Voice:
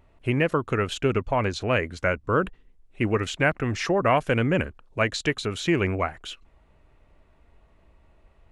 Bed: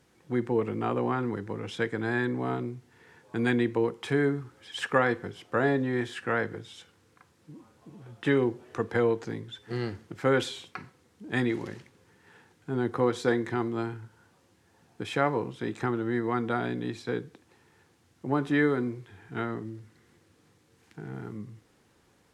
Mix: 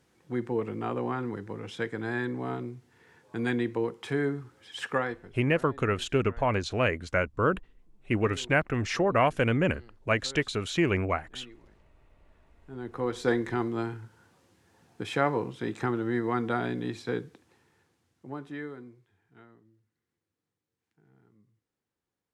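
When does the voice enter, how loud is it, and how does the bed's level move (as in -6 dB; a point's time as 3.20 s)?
5.10 s, -2.5 dB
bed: 4.92 s -3 dB
5.68 s -23 dB
12.20 s -23 dB
13.30 s 0 dB
17.20 s 0 dB
19.61 s -24.5 dB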